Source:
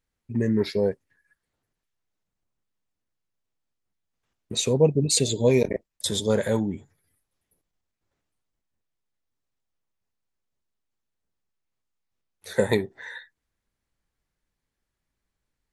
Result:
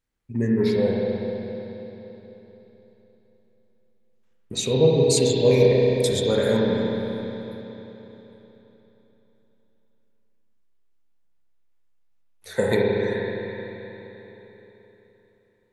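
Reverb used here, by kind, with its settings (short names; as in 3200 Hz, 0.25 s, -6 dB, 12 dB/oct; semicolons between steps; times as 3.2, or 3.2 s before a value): spring tank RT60 3.7 s, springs 31/43 ms, chirp 35 ms, DRR -3.5 dB; gain -1.5 dB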